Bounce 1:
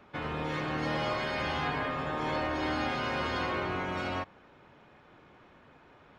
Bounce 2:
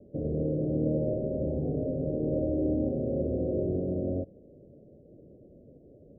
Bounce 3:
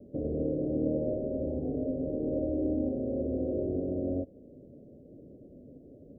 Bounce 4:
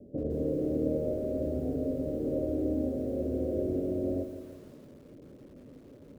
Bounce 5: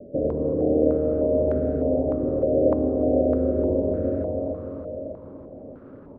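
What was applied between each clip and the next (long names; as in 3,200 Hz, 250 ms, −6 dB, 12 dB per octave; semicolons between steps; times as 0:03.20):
Butterworth low-pass 600 Hz 72 dB per octave; level +7 dB
dynamic equaliser 160 Hz, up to −8 dB, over −45 dBFS, Q 1.1; speech leveller 2 s; parametric band 260 Hz +7.5 dB 0.32 octaves; level −1.5 dB
feedback echo at a low word length 167 ms, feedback 55%, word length 9 bits, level −10 dB
repeating echo 297 ms, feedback 58%, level −4.5 dB; low-pass on a step sequencer 3.3 Hz 630–1,500 Hz; level +4.5 dB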